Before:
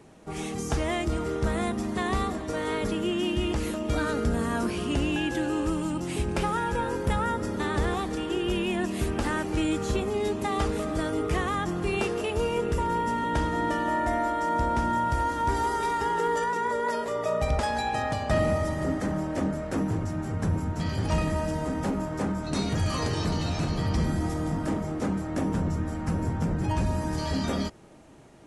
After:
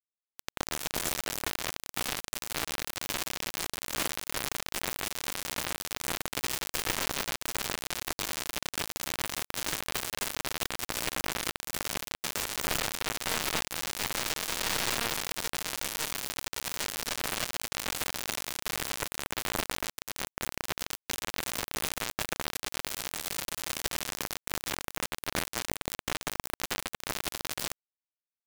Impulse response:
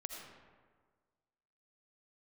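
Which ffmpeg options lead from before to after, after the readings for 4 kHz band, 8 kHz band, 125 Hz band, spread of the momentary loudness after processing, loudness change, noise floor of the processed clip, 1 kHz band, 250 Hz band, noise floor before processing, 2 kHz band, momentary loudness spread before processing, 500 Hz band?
+4.5 dB, +8.5 dB, -17.0 dB, 5 LU, -5.0 dB, under -85 dBFS, -10.0 dB, -16.0 dB, -34 dBFS, -1.0 dB, 3 LU, -12.5 dB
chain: -filter_complex "[0:a]aeval=exprs='0.0282*(abs(mod(val(0)/0.0282+3,4)-2)-1)':c=same,acrossover=split=1400|4600[a][b][c];[a]adelay=30[d];[c]adelay=370[e];[d][b][e]amix=inputs=3:normalize=0,asplit=2[f][g];[1:a]atrim=start_sample=2205[h];[g][h]afir=irnorm=-1:irlink=0,volume=3dB[i];[f][i]amix=inputs=2:normalize=0,acrusher=bits=3:mix=0:aa=0.000001,volume=1.5dB"

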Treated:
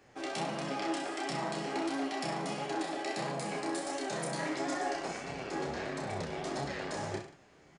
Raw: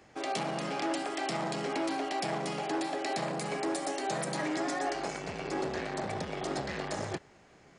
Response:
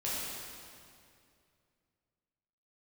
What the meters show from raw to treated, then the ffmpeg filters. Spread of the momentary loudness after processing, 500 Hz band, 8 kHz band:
4 LU, -2.5 dB, -2.0 dB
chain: -af "aecho=1:1:30|63|99.3|139.2|183.2:0.631|0.398|0.251|0.158|0.1,flanger=delay=6.9:depth=6.4:regen=47:speed=1.5:shape=sinusoidal"

